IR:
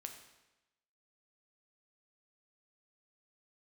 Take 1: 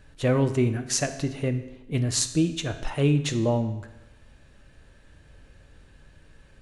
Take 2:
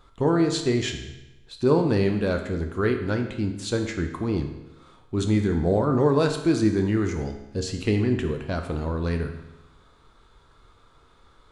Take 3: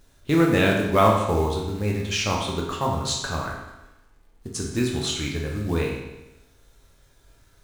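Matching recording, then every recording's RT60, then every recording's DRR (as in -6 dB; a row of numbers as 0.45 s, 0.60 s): 2; 1.0 s, 1.0 s, 1.0 s; 8.0 dB, 4.0 dB, -2.0 dB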